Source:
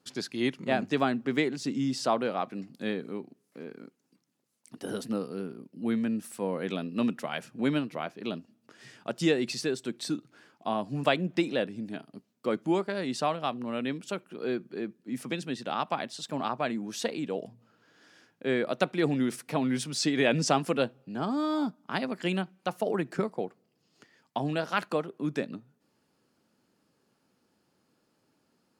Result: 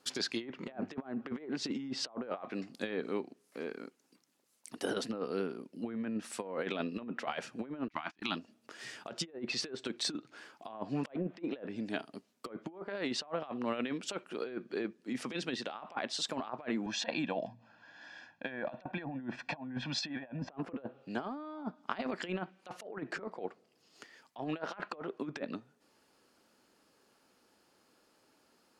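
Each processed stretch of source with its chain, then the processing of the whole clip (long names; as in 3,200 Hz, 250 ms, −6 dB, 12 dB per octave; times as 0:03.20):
0:07.88–0:08.36: drawn EQ curve 320 Hz 0 dB, 480 Hz −25 dB, 840 Hz +4 dB + noise gate −44 dBFS, range −27 dB
0:16.86–0:20.50: high-frequency loss of the air 160 metres + comb filter 1.2 ms, depth 90%
whole clip: treble cut that deepens with the level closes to 1,100 Hz, closed at −23 dBFS; parametric band 140 Hz −12.5 dB 1.9 octaves; compressor whose output falls as the input rises −38 dBFS, ratio −0.5; level +1 dB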